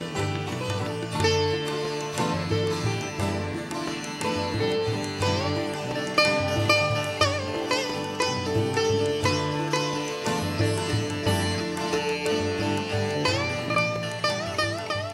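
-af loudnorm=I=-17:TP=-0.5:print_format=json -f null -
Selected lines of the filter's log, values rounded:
"input_i" : "-25.9",
"input_tp" : "-7.1",
"input_lra" : "2.6",
"input_thresh" : "-35.9",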